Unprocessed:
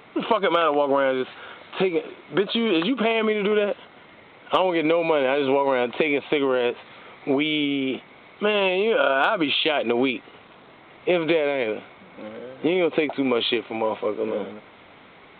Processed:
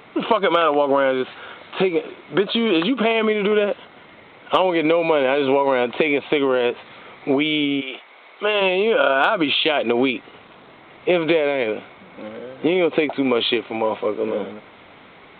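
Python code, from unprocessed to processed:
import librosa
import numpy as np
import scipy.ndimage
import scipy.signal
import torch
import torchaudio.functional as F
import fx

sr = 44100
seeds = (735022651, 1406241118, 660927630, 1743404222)

y = fx.highpass(x, sr, hz=fx.line((7.8, 810.0), (8.6, 360.0)), slope=12, at=(7.8, 8.6), fade=0.02)
y = y * 10.0 ** (3.0 / 20.0)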